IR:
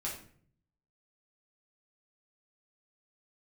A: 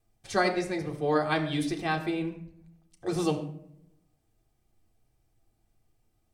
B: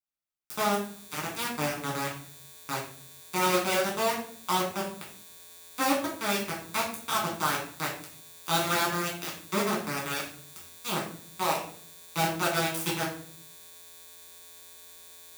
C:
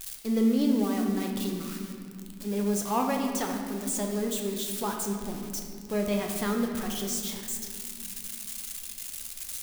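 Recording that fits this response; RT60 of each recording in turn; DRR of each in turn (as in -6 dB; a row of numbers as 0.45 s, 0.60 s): B; 0.70 s, 0.55 s, 2.3 s; 1.5 dB, -4.5 dB, 1.5 dB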